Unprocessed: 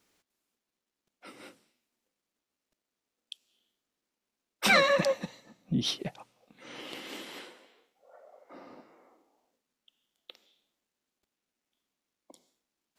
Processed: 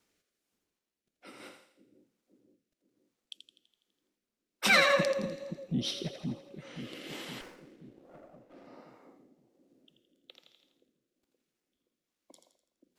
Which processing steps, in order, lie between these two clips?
two-band feedback delay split 430 Hz, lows 523 ms, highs 83 ms, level -6.5 dB; rotary cabinet horn 1.2 Hz; 7.41–8.67 s: sliding maximum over 9 samples

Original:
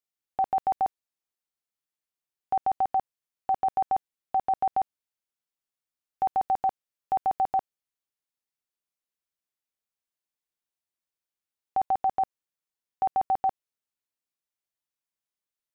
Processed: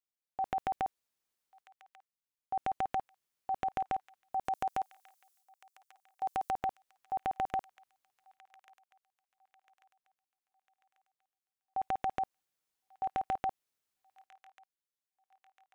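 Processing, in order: 4.45–6.55 s: tone controls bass -10 dB, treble +14 dB; transient shaper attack -2 dB, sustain +12 dB; feedback echo behind a high-pass 1141 ms, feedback 42%, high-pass 1.7 kHz, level -14.5 dB; trim -7.5 dB

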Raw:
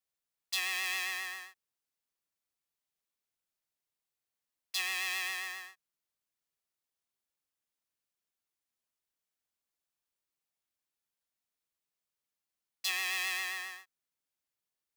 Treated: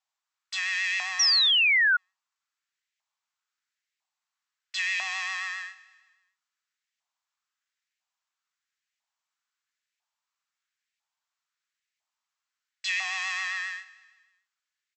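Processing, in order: saturation -28.5 dBFS, distortion -12 dB; LFO high-pass saw up 1 Hz 800–2100 Hz; brick-wall FIR band-pass 560–8100 Hz; on a send: feedback delay 154 ms, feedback 53%, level -19 dB; on the sum: painted sound fall, 1.19–1.97 s, 1.4–5.9 kHz -25 dBFS; trim +4 dB

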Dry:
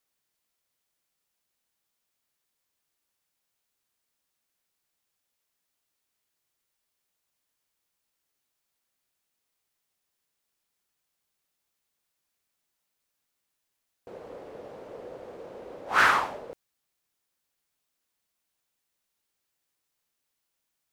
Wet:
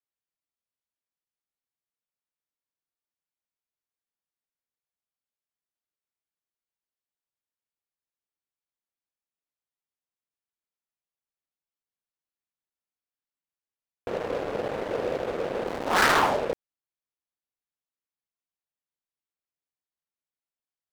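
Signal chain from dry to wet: 15.67–16.23 s: cycle switcher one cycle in 2, muted; treble shelf 3.6 kHz -9.5 dB; waveshaping leveller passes 5; trim -4 dB

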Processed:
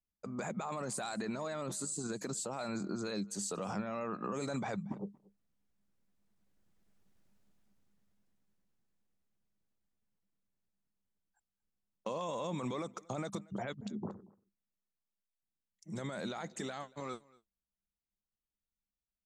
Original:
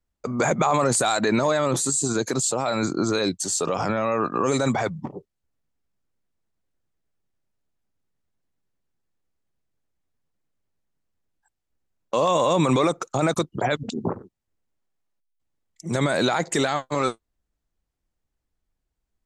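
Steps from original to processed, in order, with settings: Doppler pass-by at 7.23 s, 9 m/s, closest 5 m; peaking EQ 200 Hz +15 dB 0.2 oct; compression 4:1, threshold -42 dBFS, peak gain reduction 9.5 dB; on a send: delay 232 ms -24 dB; on the sum: trim +6.5 dB

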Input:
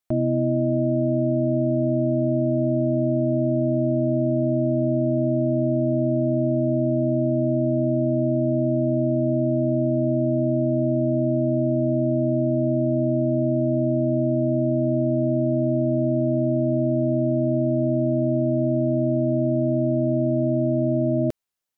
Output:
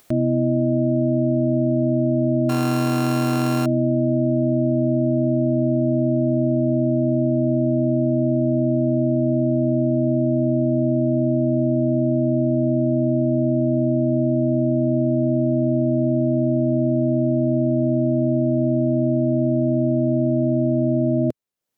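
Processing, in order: 2.49–3.66 s: sorted samples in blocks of 32 samples; graphic EQ 125/250/500 Hz +5/+6/+6 dB; upward compressor, threshold -26 dBFS; trim -4.5 dB

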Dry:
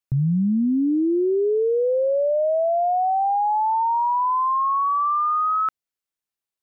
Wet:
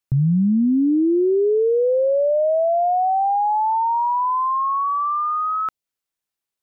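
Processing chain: dynamic bell 1.5 kHz, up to -5 dB, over -36 dBFS, Q 1.3; trim +3 dB

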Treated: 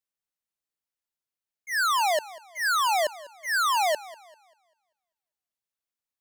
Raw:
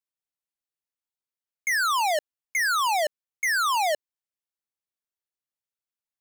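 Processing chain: slow attack 124 ms; modulated delay 196 ms, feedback 35%, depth 105 cents, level -19 dB

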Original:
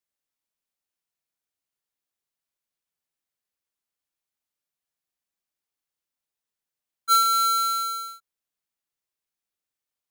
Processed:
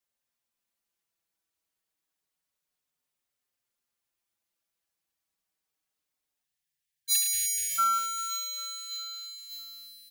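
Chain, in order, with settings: spectral selection erased 6.44–7.78 s, 200–1600 Hz; two-band feedback delay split 2 kHz, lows 198 ms, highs 601 ms, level -7.5 dB; endless flanger 5.2 ms -0.28 Hz; trim +5 dB

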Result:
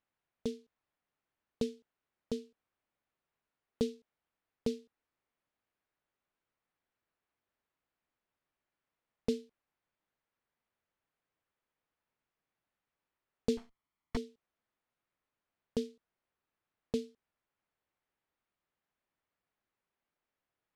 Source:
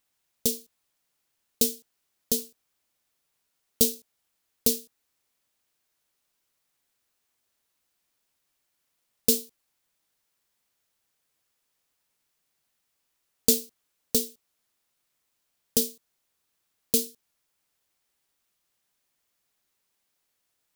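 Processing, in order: 13.57–14.17 s: comb filter that takes the minimum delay 0.94 ms; low-pass 2 kHz 12 dB/octave; trim -4.5 dB

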